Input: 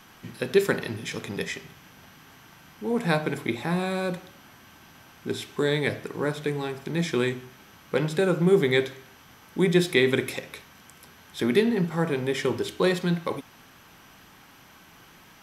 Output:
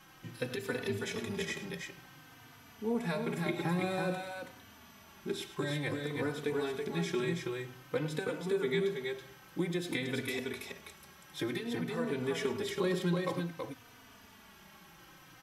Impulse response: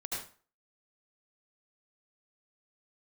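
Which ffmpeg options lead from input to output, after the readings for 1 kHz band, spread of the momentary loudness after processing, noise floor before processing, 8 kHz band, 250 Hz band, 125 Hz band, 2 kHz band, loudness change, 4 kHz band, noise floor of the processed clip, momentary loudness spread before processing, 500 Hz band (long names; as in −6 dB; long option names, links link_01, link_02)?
−7.5 dB, 22 LU, −53 dBFS, −6.5 dB, −8.5 dB, −8.5 dB, −8.5 dB, −9.5 dB, −8.0 dB, −57 dBFS, 15 LU, −9.5 dB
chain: -filter_complex "[0:a]acompressor=threshold=-24dB:ratio=6,asplit=2[link_01][link_02];[link_02]aecho=0:1:104|327:0.211|0.631[link_03];[link_01][link_03]amix=inputs=2:normalize=0,asplit=2[link_04][link_05];[link_05]adelay=3.3,afreqshift=-0.53[link_06];[link_04][link_06]amix=inputs=2:normalize=1,volume=-3dB"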